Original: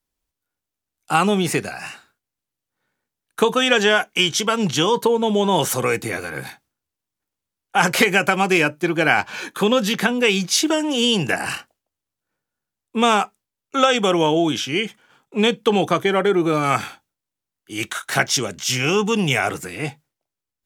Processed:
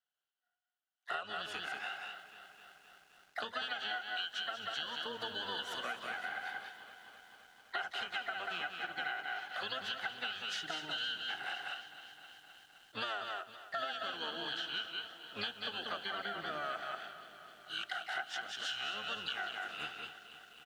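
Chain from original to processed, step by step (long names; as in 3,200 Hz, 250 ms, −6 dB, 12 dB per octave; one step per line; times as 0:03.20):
pair of resonant band-passes 2,100 Hz, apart 1 octave
single-tap delay 189 ms −6.5 dB
pitch-shifted copies added −12 semitones −4 dB, +4 semitones −18 dB, +5 semitones −11 dB
downward compressor 8 to 1, threshold −37 dBFS, peak gain reduction 21.5 dB
feedback echo at a low word length 259 ms, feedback 80%, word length 10 bits, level −14 dB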